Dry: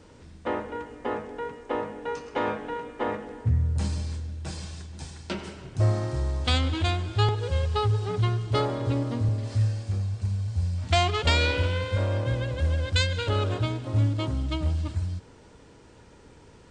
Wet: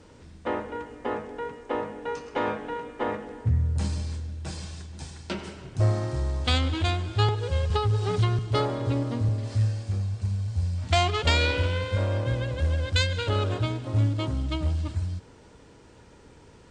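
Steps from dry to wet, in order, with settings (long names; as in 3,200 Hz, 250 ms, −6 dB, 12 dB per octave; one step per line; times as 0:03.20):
harmonic generator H 2 −19 dB, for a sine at −9 dBFS
0:07.70–0:08.39: multiband upward and downward compressor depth 100%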